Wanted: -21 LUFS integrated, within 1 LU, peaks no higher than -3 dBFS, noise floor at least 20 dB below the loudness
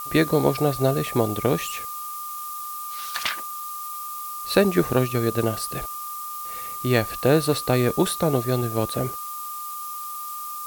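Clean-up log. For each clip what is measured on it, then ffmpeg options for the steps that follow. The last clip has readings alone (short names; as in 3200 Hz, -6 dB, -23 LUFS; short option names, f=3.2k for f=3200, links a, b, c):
steady tone 1200 Hz; tone level -32 dBFS; noise floor -33 dBFS; noise floor target -45 dBFS; loudness -24.5 LUFS; peak -3.0 dBFS; loudness target -21.0 LUFS
-> -af "bandreject=f=1.2k:w=30"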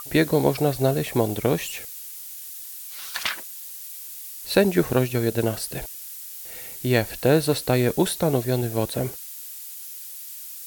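steady tone none; noise floor -38 dBFS; noise floor target -45 dBFS
-> -af "afftdn=nr=7:nf=-38"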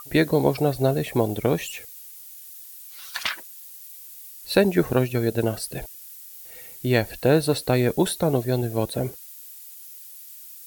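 noise floor -43 dBFS; noise floor target -44 dBFS
-> -af "afftdn=nr=6:nf=-43"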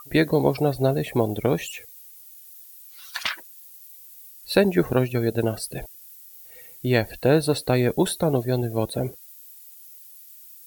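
noise floor -47 dBFS; loudness -23.5 LUFS; peak -3.0 dBFS; loudness target -21.0 LUFS
-> -af "volume=2.5dB,alimiter=limit=-3dB:level=0:latency=1"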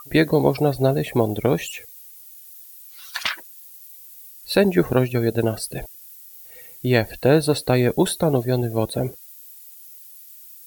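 loudness -21.0 LUFS; peak -3.0 dBFS; noise floor -44 dBFS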